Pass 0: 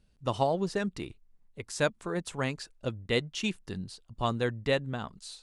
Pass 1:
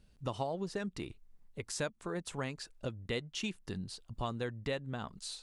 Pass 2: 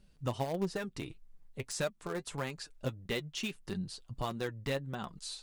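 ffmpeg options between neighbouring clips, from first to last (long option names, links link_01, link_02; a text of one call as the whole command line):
ffmpeg -i in.wav -af "acompressor=threshold=-41dB:ratio=2.5,volume=2.5dB" out.wav
ffmpeg -i in.wav -filter_complex "[0:a]asplit=2[link_01][link_02];[link_02]acrusher=bits=4:mix=0:aa=0.000001,volume=-11dB[link_03];[link_01][link_03]amix=inputs=2:normalize=0,volume=26dB,asoftclip=hard,volume=-26dB,flanger=delay=4.9:depth=3.3:regen=37:speed=1.6:shape=triangular,volume=4.5dB" out.wav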